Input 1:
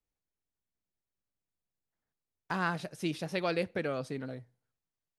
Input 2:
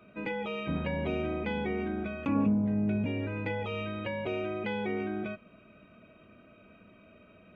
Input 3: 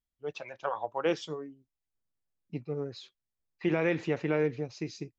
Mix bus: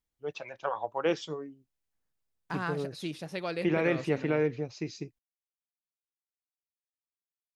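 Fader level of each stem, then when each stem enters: -3.0 dB, mute, +0.5 dB; 0.00 s, mute, 0.00 s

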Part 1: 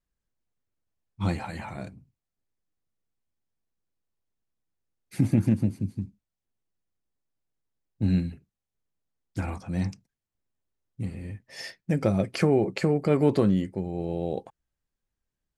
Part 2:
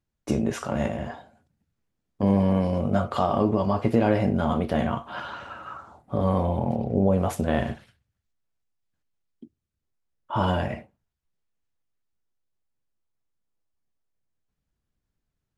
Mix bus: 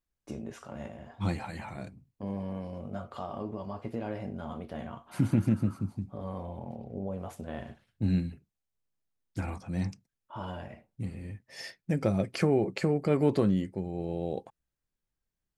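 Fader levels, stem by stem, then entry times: -3.5 dB, -15.0 dB; 0.00 s, 0.00 s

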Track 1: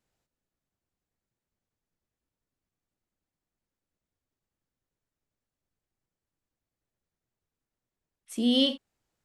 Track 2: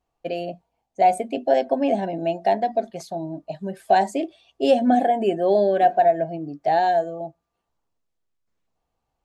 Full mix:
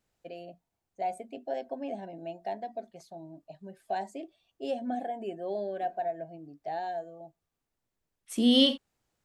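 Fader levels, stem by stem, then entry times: +2.0 dB, -15.5 dB; 0.00 s, 0.00 s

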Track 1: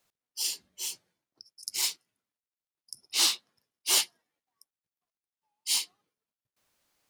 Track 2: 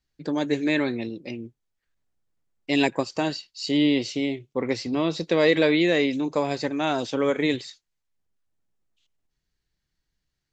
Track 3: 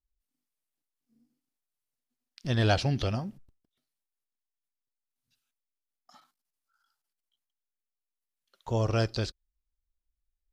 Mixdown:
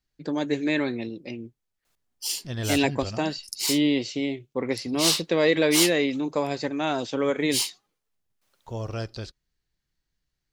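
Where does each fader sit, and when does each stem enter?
+1.5 dB, -1.5 dB, -5.0 dB; 1.85 s, 0.00 s, 0.00 s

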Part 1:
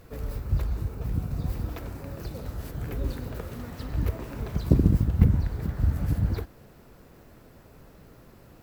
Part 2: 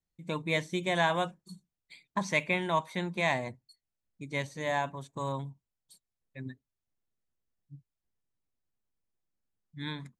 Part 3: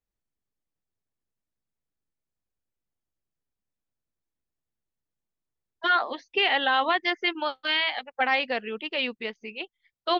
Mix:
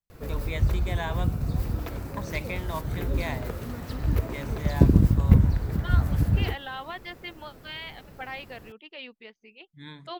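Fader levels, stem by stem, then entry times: +2.5 dB, -6.0 dB, -13.5 dB; 0.10 s, 0.00 s, 0.00 s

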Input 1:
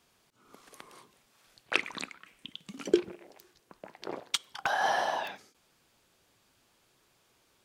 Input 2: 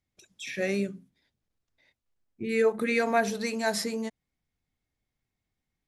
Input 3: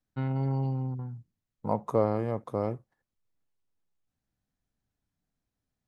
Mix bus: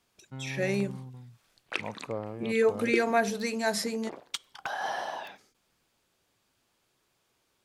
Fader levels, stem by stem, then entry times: -5.0 dB, -0.5 dB, -10.0 dB; 0.00 s, 0.00 s, 0.15 s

